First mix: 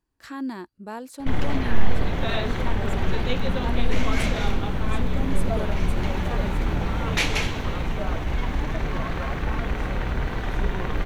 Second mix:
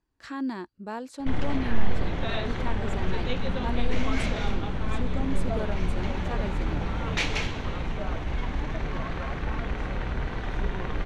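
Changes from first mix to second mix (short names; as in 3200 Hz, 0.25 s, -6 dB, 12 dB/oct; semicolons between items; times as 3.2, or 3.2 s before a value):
background -4.0 dB; master: add LPF 6900 Hz 12 dB/oct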